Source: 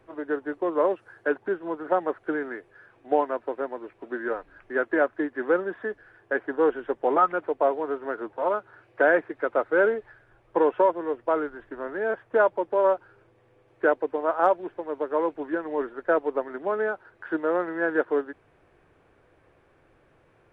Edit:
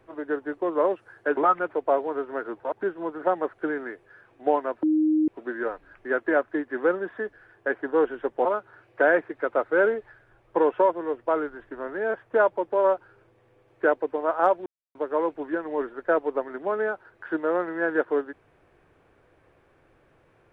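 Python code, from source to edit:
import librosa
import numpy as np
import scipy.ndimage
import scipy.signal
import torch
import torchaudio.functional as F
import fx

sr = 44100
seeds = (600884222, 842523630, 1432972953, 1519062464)

y = fx.edit(x, sr, fx.bleep(start_s=3.48, length_s=0.45, hz=310.0, db=-18.0),
    fx.move(start_s=7.1, length_s=1.35, to_s=1.37),
    fx.silence(start_s=14.66, length_s=0.29), tone=tone)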